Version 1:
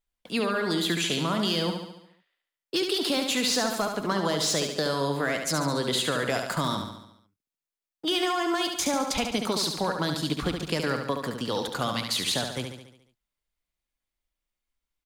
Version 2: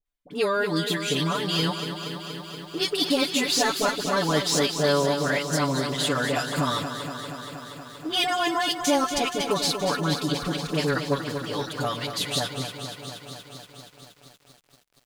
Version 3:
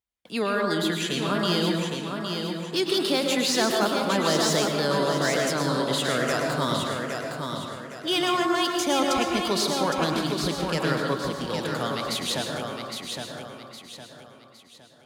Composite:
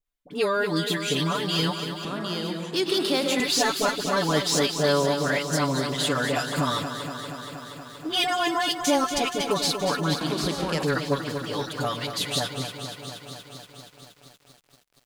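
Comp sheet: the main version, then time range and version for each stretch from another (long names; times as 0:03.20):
2
0:02.05–0:03.40: punch in from 3
0:10.21–0:10.83: punch in from 3
not used: 1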